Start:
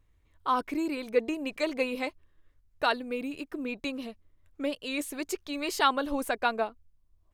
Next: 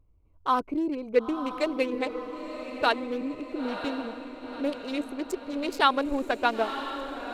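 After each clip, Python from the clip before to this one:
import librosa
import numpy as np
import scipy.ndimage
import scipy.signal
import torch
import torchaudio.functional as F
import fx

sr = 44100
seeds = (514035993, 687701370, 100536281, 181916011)

y = fx.wiener(x, sr, points=25)
y = fx.echo_diffused(y, sr, ms=972, feedback_pct=54, wet_db=-9.0)
y = y * librosa.db_to_amplitude(3.0)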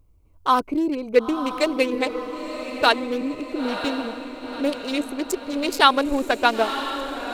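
y = fx.high_shelf(x, sr, hz=4000.0, db=8.5)
y = y * librosa.db_to_amplitude(5.5)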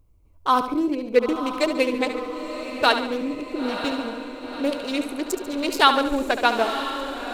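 y = fx.echo_feedback(x, sr, ms=71, feedback_pct=49, wet_db=-10)
y = y * librosa.db_to_amplitude(-1.0)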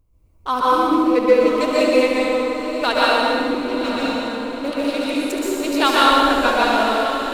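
y = fx.rev_plate(x, sr, seeds[0], rt60_s=2.1, hf_ratio=0.85, predelay_ms=110, drr_db=-7.5)
y = y * librosa.db_to_amplitude(-3.0)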